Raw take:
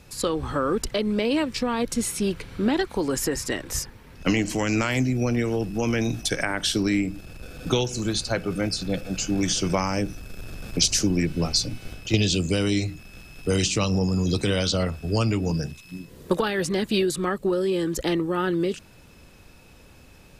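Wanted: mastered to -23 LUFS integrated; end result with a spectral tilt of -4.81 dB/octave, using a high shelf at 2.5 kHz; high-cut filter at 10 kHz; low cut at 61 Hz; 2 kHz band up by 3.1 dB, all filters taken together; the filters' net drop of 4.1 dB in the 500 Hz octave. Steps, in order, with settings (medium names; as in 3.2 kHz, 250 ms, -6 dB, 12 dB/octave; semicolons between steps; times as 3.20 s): high-pass 61 Hz; low-pass 10 kHz; peaking EQ 500 Hz -5.5 dB; peaking EQ 2 kHz +7 dB; treble shelf 2.5 kHz -6 dB; trim +3.5 dB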